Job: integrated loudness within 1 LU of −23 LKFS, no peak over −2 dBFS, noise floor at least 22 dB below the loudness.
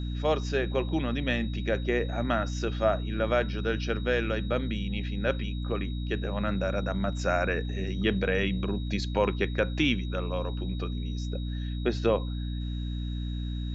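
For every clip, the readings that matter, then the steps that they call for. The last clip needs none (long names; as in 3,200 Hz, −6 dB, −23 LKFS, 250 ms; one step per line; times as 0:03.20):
mains hum 60 Hz; hum harmonics up to 300 Hz; level of the hum −30 dBFS; interfering tone 3,800 Hz; level of the tone −47 dBFS; integrated loudness −29.5 LKFS; sample peak −11.5 dBFS; target loudness −23.0 LKFS
→ mains-hum notches 60/120/180/240/300 Hz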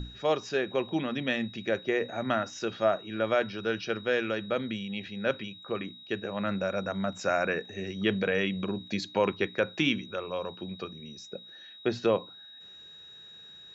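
mains hum none found; interfering tone 3,800 Hz; level of the tone −47 dBFS
→ notch filter 3,800 Hz, Q 30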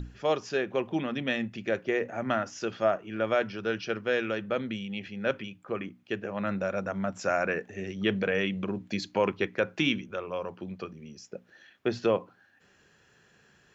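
interfering tone none found; integrated loudness −31.0 LKFS; sample peak −12.0 dBFS; target loudness −23.0 LKFS
→ level +8 dB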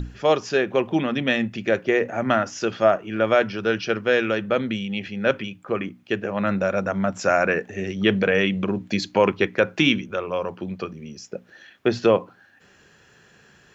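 integrated loudness −23.0 LKFS; sample peak −4.0 dBFS; background noise floor −55 dBFS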